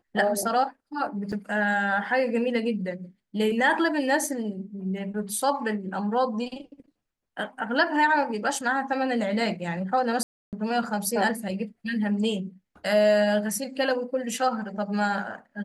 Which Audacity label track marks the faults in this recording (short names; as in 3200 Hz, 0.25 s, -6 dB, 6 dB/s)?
1.320000	1.330000	gap 6.2 ms
10.230000	10.530000	gap 0.298 s